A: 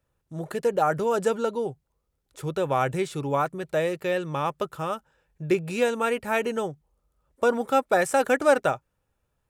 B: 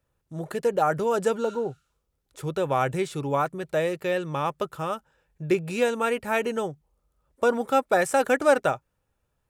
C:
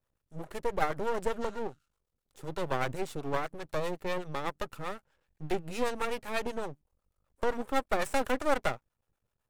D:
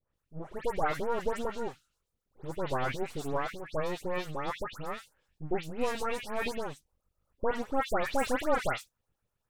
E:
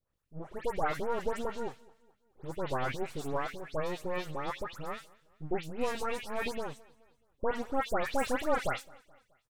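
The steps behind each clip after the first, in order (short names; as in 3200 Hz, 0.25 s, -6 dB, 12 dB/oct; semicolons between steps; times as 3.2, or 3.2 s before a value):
spectral repair 1.47–2.05, 1200–12000 Hz both
harmonic tremolo 7.9 Hz, depth 70%, crossover 500 Hz; half-wave rectifier
dispersion highs, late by 0.144 s, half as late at 2400 Hz
feedback echo 0.213 s, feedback 48%, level -24 dB; gain -1.5 dB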